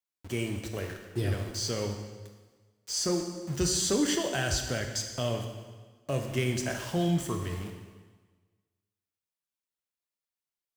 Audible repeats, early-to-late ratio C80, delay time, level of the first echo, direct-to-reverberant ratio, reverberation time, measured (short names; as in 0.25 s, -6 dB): none, 7.5 dB, none, none, 3.5 dB, 1.4 s